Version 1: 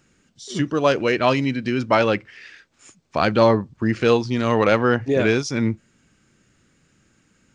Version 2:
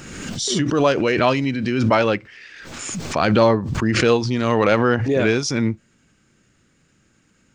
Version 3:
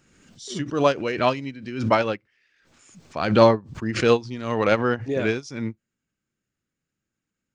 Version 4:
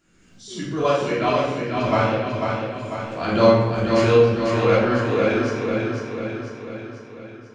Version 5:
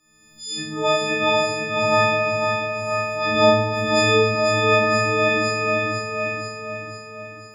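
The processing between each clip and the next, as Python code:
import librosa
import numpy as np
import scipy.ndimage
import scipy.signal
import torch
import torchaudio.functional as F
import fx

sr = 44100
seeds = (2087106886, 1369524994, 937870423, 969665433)

y1 = fx.pre_swell(x, sr, db_per_s=36.0)
y2 = fx.upward_expand(y1, sr, threshold_db=-29.0, expansion=2.5)
y2 = y2 * 10.0 ** (2.0 / 20.0)
y3 = fx.echo_feedback(y2, sr, ms=495, feedback_pct=55, wet_db=-5.0)
y3 = fx.room_shoebox(y3, sr, seeds[0], volume_m3=520.0, walls='mixed', distance_m=3.1)
y3 = y3 * 10.0 ** (-7.5 / 20.0)
y4 = fx.freq_snap(y3, sr, grid_st=6)
y4 = y4 + 10.0 ** (-10.0 / 20.0) * np.pad(y4, (int(953 * sr / 1000.0), 0))[:len(y4)]
y4 = fx.dynamic_eq(y4, sr, hz=2900.0, q=1.2, threshold_db=-30.0, ratio=4.0, max_db=4)
y4 = y4 * 10.0 ** (-4.0 / 20.0)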